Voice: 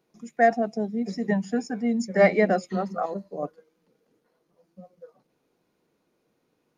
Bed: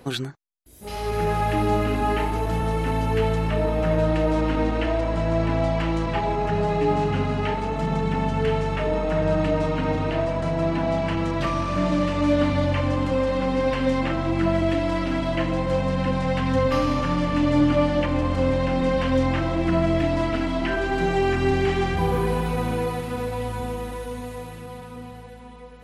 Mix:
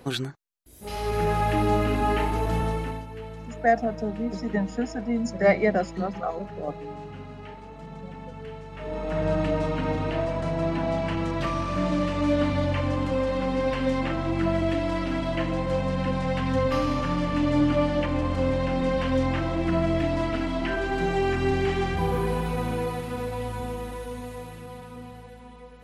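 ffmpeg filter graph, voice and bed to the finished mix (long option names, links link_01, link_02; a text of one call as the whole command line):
ffmpeg -i stem1.wav -i stem2.wav -filter_complex "[0:a]adelay=3250,volume=-1.5dB[link_01];[1:a]volume=12.5dB,afade=type=out:start_time=2.6:duration=0.46:silence=0.16788,afade=type=in:start_time=8.71:duration=0.56:silence=0.211349[link_02];[link_01][link_02]amix=inputs=2:normalize=0" out.wav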